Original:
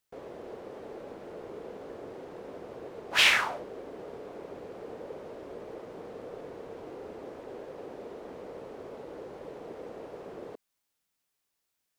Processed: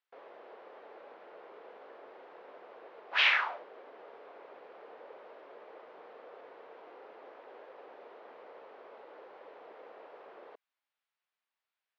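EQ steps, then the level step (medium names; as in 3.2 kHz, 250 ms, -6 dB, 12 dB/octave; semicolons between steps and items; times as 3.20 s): band-pass 790–4500 Hz; distance through air 220 m; 0.0 dB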